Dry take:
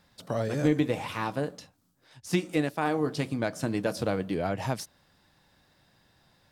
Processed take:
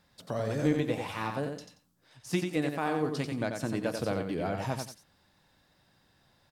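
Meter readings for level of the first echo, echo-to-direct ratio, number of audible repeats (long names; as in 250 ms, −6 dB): −5.5 dB, −5.5 dB, 2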